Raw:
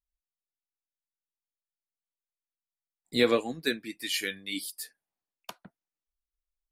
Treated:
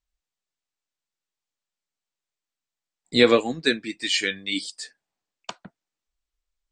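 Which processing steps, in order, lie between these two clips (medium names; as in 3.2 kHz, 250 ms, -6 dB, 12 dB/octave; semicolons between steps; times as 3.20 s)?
elliptic low-pass 8.1 kHz, stop band 40 dB; trim +8 dB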